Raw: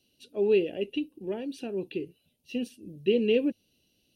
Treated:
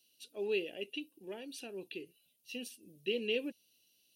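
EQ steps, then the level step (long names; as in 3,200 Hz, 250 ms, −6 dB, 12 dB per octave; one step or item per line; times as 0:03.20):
spectral tilt +3.5 dB per octave
−7.0 dB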